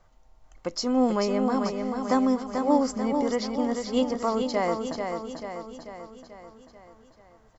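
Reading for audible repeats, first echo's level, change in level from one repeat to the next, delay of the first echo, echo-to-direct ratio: 6, −5.5 dB, −5.0 dB, 439 ms, −4.0 dB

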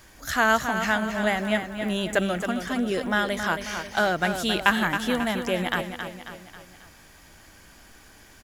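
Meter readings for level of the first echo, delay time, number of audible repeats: −8.0 dB, 271 ms, 4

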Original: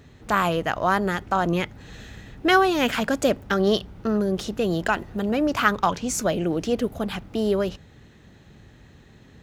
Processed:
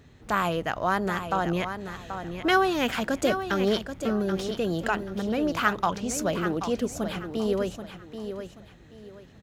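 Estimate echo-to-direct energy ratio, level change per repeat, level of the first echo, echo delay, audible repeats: −8.5 dB, −11.0 dB, −9.0 dB, 782 ms, 3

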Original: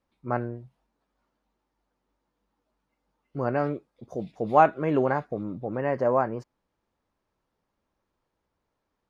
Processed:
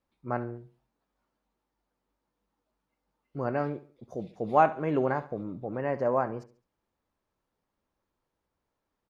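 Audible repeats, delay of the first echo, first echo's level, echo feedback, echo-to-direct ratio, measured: 3, 70 ms, −16.5 dB, 37%, −16.0 dB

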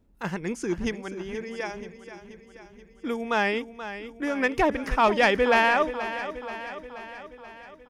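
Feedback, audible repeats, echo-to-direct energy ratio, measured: 59%, 6, −10.0 dB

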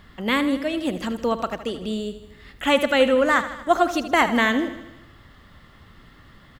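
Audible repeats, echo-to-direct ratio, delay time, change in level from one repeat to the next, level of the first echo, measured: 5, −10.5 dB, 78 ms, −4.5 dB, −12.5 dB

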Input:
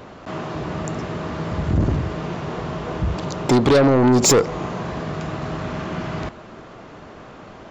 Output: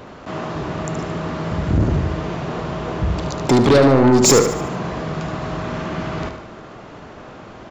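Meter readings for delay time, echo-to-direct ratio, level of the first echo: 74 ms, −7.0 dB, −8.0 dB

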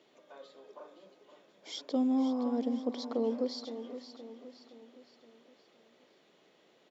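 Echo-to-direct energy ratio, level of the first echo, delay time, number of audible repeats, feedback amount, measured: −10.0 dB, −11.0 dB, 518 ms, 4, 47%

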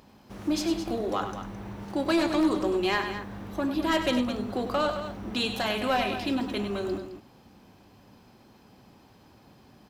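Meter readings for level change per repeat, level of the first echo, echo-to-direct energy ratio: repeats not evenly spaced, −9.0 dB, −7.0 dB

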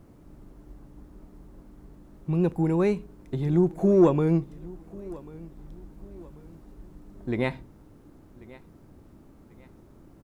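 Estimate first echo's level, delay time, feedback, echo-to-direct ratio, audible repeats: −21.0 dB, 1,090 ms, 38%, −20.5 dB, 2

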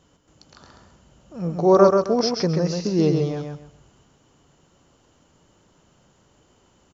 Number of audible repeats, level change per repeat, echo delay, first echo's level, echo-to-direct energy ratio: 3, −12.0 dB, 133 ms, −4.5 dB, −4.0 dB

